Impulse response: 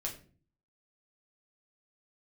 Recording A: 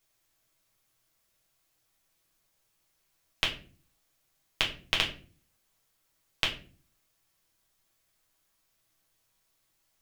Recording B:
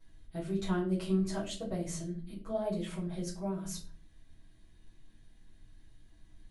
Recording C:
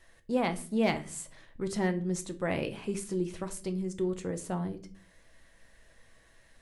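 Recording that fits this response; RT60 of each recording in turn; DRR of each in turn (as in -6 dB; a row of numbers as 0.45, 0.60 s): A; 0.40, 0.40, 0.40 s; -2.5, -9.5, 7.5 dB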